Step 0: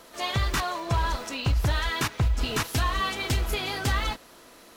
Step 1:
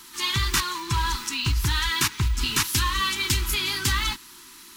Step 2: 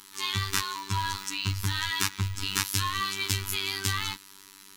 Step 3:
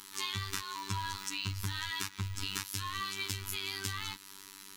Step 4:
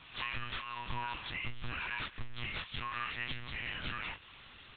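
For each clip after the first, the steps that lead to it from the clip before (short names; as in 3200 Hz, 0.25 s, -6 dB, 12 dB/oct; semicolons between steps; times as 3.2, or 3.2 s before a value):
elliptic band-stop 380–900 Hz, stop band 50 dB; high shelf 2400 Hz +10.5 dB
robotiser 97.3 Hz; gain -2.5 dB
compressor, threshold -32 dBFS, peak gain reduction 12 dB
nonlinear frequency compression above 1200 Hz 1.5:1; monotone LPC vocoder at 8 kHz 120 Hz; gain -1 dB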